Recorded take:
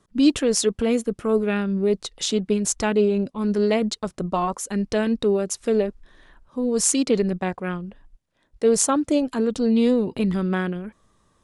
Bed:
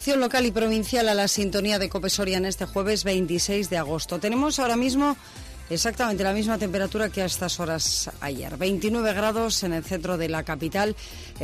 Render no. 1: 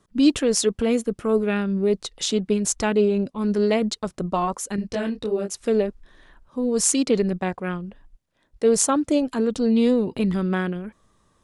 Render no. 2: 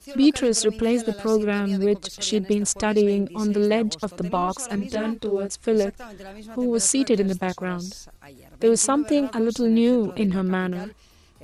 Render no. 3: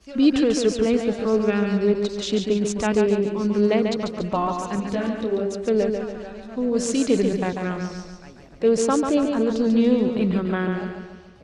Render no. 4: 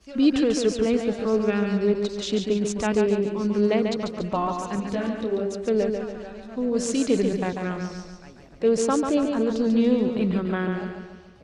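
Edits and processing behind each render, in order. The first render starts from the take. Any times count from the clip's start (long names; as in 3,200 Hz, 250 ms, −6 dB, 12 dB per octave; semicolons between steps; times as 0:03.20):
0:04.76–0:05.54: micro pitch shift up and down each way 37 cents
mix in bed −16 dB
high-frequency loss of the air 110 metres; repeating echo 142 ms, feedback 49%, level −5.5 dB
level −2 dB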